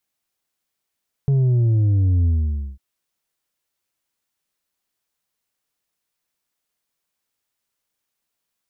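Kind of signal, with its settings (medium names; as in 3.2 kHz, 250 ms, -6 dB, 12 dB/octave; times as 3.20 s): sub drop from 140 Hz, over 1.50 s, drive 4.5 dB, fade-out 0.52 s, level -14.5 dB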